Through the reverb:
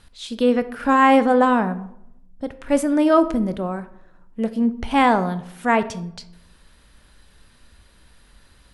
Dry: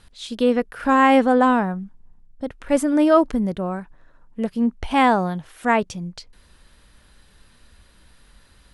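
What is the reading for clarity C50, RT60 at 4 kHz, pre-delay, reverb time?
15.0 dB, 0.45 s, 13 ms, 0.80 s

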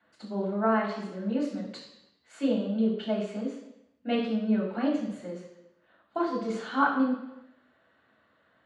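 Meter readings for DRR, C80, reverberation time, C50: −9.5 dB, 7.0 dB, 0.85 s, 5.0 dB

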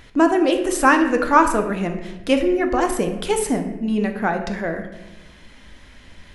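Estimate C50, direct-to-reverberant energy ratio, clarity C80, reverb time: 8.0 dB, 5.0 dB, 10.5 dB, 1.0 s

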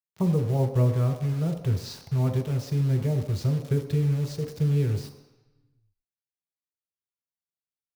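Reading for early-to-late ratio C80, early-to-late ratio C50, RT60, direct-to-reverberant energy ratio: 10.5 dB, 9.0 dB, 1.0 s, 4.0 dB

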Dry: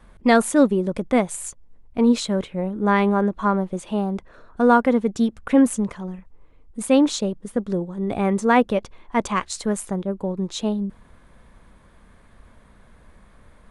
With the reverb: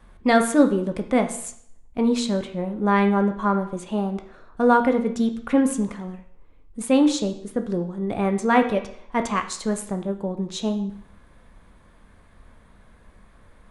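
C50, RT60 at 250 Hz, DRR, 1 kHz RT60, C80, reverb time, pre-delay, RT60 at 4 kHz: 10.5 dB, 0.60 s, 6.0 dB, 0.60 s, 14.0 dB, 0.60 s, 13 ms, 0.60 s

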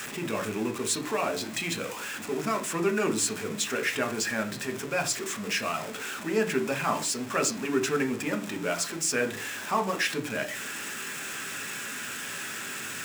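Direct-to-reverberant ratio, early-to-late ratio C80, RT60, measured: 5.0 dB, 19.5 dB, 0.40 s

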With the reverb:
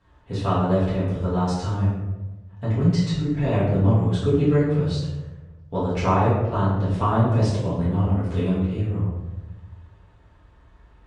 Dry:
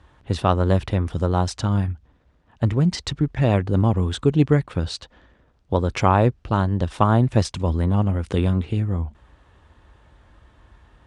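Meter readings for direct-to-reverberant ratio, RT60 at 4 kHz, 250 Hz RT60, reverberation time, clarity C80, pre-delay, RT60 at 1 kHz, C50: −11.0 dB, 0.60 s, 1.4 s, 1.1 s, 4.0 dB, 4 ms, 0.95 s, 1.0 dB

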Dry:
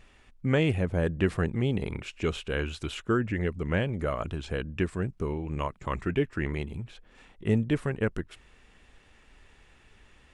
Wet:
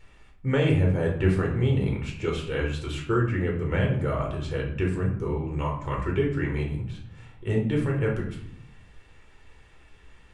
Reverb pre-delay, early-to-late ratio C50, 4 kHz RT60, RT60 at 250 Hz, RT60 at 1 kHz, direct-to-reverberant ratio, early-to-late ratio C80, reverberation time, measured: 8 ms, 6.0 dB, 0.40 s, 1.1 s, 0.70 s, −1.5 dB, 10.0 dB, 0.70 s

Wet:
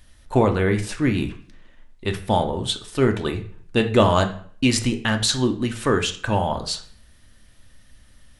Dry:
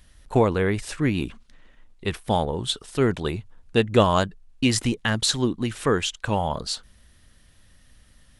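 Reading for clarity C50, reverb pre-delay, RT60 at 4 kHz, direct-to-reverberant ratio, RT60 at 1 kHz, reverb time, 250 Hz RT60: 12.0 dB, 3 ms, 0.45 s, 5.0 dB, 0.50 s, 0.50 s, 0.65 s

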